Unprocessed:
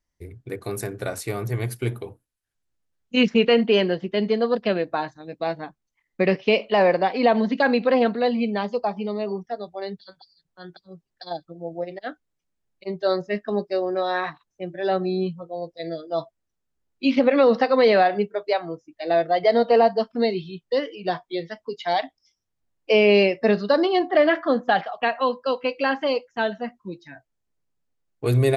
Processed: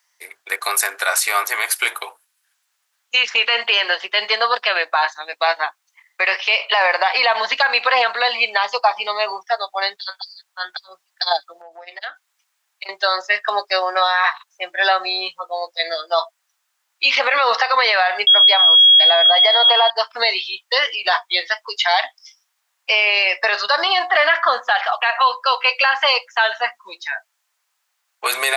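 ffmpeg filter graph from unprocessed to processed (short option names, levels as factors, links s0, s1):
-filter_complex "[0:a]asettb=1/sr,asplit=3[s0][s1][s2];[s0]atrim=end=11.614[s3];[s1]atrim=start=11.61:end=12.89,asetpts=PTS-STARTPTS,afade=t=in:d=0.004:c=qsin,afade=t=out:st=1.276:d=0.004:c=qsin,bandreject=f=560:w=11,acompressor=threshold=0.00891:ratio=6:attack=3.2:release=140:knee=1:detection=peak[s4];[s2]atrim=start=12.886[s5];[s3][s4]acrossfade=d=0.004:c1=hsin:c2=qsin[s6];[s6][s5]acrossfade=d=0.004:c1=qsin:c2=hsin,asettb=1/sr,asplit=3[s7][s8][s9];[s7]atrim=end=18.274[s10];[s8]atrim=start=18.27:end=19.9,asetpts=PTS-STARTPTS,afade=t=in:d=0.004:c=qsin,afade=t=out:st=1.626:d=0.004:c=qsin,equalizer=f=790:w=0.57:g=7,aeval=exprs='val(0)+0.0891*sin(2*PI*3300*n/s)':c=same[s11];[s9]atrim=start=19.896[s12];[s10][s11]acrossfade=d=0.004:c1=hsin:c2=qsin[s13];[s13][s12]acrossfade=d=0.004:c1=qsin:c2=hsin,highpass=f=920:w=0.5412,highpass=f=920:w=1.3066,acompressor=threshold=0.0447:ratio=6,alimiter=level_in=18.8:limit=0.891:release=50:level=0:latency=1,volume=0.562"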